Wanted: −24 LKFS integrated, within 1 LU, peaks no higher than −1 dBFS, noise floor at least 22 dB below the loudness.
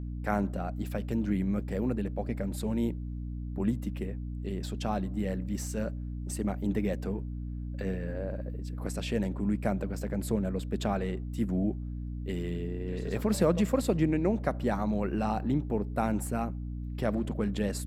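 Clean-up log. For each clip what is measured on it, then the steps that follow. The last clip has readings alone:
mains hum 60 Hz; hum harmonics up to 300 Hz; level of the hum −34 dBFS; integrated loudness −32.0 LKFS; sample peak −12.0 dBFS; target loudness −24.0 LKFS
→ mains-hum notches 60/120/180/240/300 Hz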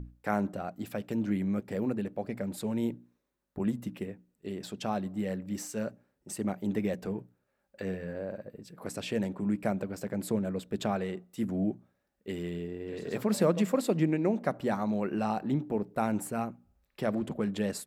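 mains hum none found; integrated loudness −33.0 LKFS; sample peak −13.0 dBFS; target loudness −24.0 LKFS
→ level +9 dB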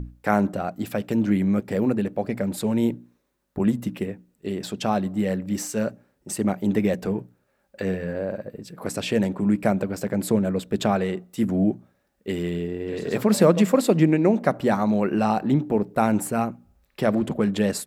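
integrated loudness −24.0 LKFS; sample peak −4.0 dBFS; background noise floor −69 dBFS

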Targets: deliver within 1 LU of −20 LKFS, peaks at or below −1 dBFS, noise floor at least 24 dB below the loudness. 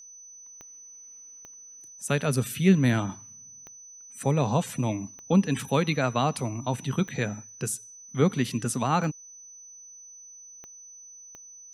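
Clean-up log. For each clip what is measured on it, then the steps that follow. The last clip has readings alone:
number of clicks 8; interfering tone 6,000 Hz; level of the tone −45 dBFS; integrated loudness −27.0 LKFS; sample peak −9.0 dBFS; target loudness −20.0 LKFS
→ click removal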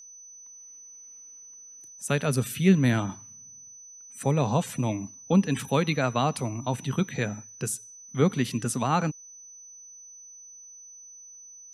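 number of clicks 0; interfering tone 6,000 Hz; level of the tone −45 dBFS
→ notch filter 6,000 Hz, Q 30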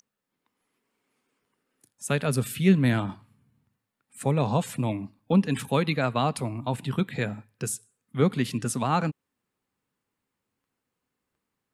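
interfering tone none found; integrated loudness −27.0 LKFS; sample peak −9.5 dBFS; target loudness −20.0 LKFS
→ level +7 dB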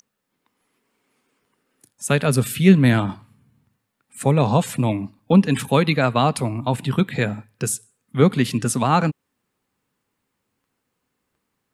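integrated loudness −20.0 LKFS; sample peak −2.5 dBFS; background noise floor −77 dBFS

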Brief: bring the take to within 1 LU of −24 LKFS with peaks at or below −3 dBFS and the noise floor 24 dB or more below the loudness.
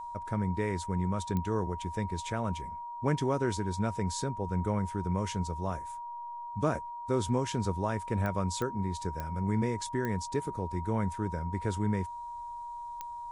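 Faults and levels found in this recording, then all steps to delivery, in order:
number of clicks 6; interfering tone 950 Hz; level of the tone −38 dBFS; integrated loudness −33.0 LKFS; sample peak −15.0 dBFS; target loudness −24.0 LKFS
→ click removal
notch filter 950 Hz, Q 30
level +9 dB

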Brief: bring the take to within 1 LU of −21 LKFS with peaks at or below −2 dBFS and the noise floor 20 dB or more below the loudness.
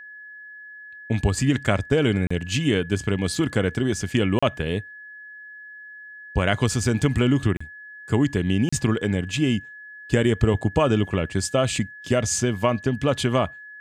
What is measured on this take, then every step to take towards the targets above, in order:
number of dropouts 4; longest dropout 35 ms; interfering tone 1,700 Hz; level of the tone −39 dBFS; integrated loudness −23.0 LKFS; sample peak −6.0 dBFS; target loudness −21.0 LKFS
→ repair the gap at 0:02.27/0:04.39/0:07.57/0:08.69, 35 ms
notch filter 1,700 Hz, Q 30
level +2 dB

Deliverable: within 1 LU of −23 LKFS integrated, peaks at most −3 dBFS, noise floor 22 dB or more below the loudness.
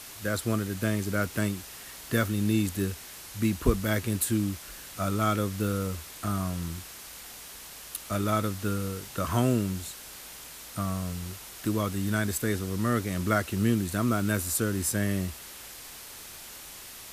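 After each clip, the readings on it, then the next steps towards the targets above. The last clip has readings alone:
background noise floor −45 dBFS; target noise floor −51 dBFS; integrated loudness −29.0 LKFS; sample peak −10.0 dBFS; target loudness −23.0 LKFS
→ broadband denoise 6 dB, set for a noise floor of −45 dBFS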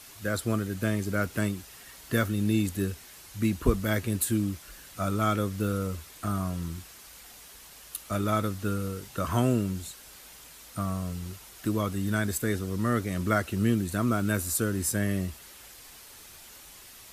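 background noise floor −50 dBFS; target noise floor −51 dBFS
→ broadband denoise 6 dB, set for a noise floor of −50 dBFS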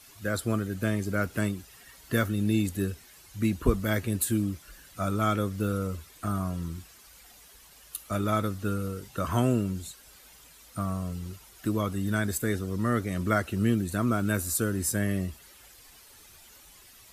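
background noise floor −54 dBFS; integrated loudness −29.5 LKFS; sample peak −10.0 dBFS; target loudness −23.0 LKFS
→ level +6.5 dB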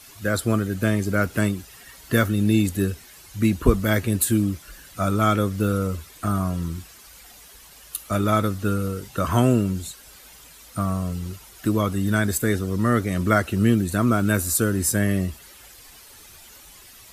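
integrated loudness −23.0 LKFS; sample peak −3.5 dBFS; background noise floor −47 dBFS

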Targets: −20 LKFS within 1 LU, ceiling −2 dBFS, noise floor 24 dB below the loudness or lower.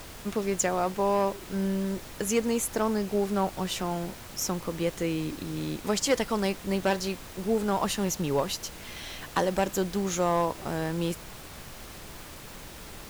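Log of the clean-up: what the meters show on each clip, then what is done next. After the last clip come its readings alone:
share of clipped samples 0.3%; peaks flattened at −17.0 dBFS; background noise floor −44 dBFS; target noise floor −53 dBFS; integrated loudness −29.0 LKFS; sample peak −17.0 dBFS; target loudness −20.0 LKFS
→ clipped peaks rebuilt −17 dBFS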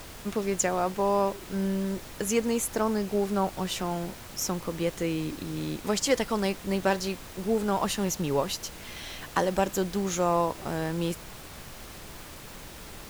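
share of clipped samples 0.0%; background noise floor −44 dBFS; target noise floor −53 dBFS
→ noise reduction from a noise print 9 dB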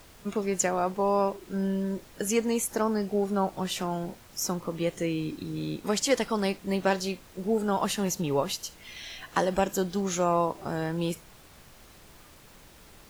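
background noise floor −53 dBFS; integrated loudness −29.0 LKFS; sample peak −11.5 dBFS; target loudness −20.0 LKFS
→ level +9 dB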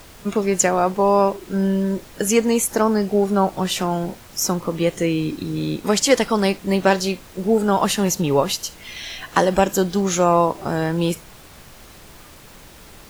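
integrated loudness −20.0 LKFS; sample peak −2.5 dBFS; background noise floor −44 dBFS

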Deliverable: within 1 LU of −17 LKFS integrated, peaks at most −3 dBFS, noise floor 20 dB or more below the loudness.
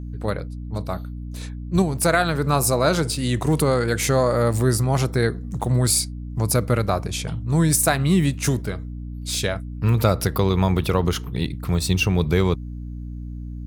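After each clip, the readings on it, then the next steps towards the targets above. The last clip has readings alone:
mains hum 60 Hz; hum harmonics up to 300 Hz; level of the hum −30 dBFS; integrated loudness −21.5 LKFS; sample peak −5.5 dBFS; target loudness −17.0 LKFS
→ hum removal 60 Hz, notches 5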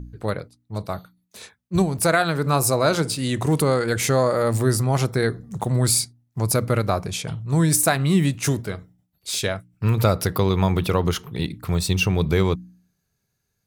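mains hum none found; integrated loudness −22.0 LKFS; sample peak −5.5 dBFS; target loudness −17.0 LKFS
→ level +5 dB
brickwall limiter −3 dBFS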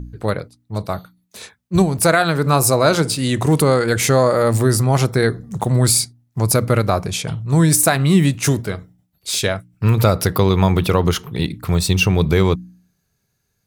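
integrated loudness −17.0 LKFS; sample peak −3.0 dBFS; background noise floor −70 dBFS

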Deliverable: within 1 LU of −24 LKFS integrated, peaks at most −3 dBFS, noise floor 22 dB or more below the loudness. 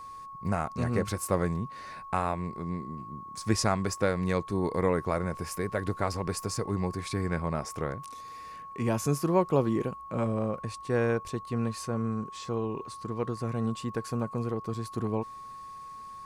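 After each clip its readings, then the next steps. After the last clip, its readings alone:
interfering tone 1,100 Hz; level of the tone −41 dBFS; integrated loudness −31.0 LKFS; sample peak −12.0 dBFS; target loudness −24.0 LKFS
→ notch filter 1,100 Hz, Q 30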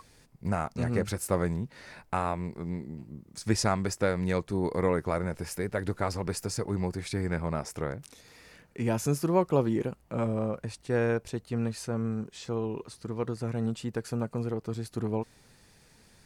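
interfering tone none found; integrated loudness −31.5 LKFS; sample peak −12.0 dBFS; target loudness −24.0 LKFS
→ level +7.5 dB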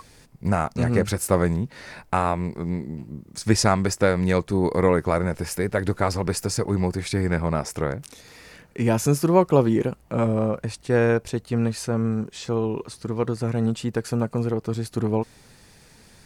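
integrated loudness −24.0 LKFS; sample peak −4.5 dBFS; background noise floor −53 dBFS

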